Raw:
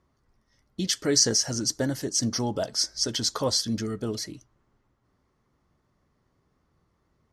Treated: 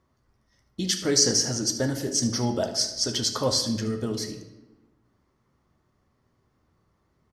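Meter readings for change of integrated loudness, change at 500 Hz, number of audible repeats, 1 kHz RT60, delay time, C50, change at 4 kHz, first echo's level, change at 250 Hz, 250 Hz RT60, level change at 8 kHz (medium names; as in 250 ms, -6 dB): +1.0 dB, +1.5 dB, 1, 0.95 s, 75 ms, 8.0 dB, +1.0 dB, -13.5 dB, +1.5 dB, 1.4 s, +1.0 dB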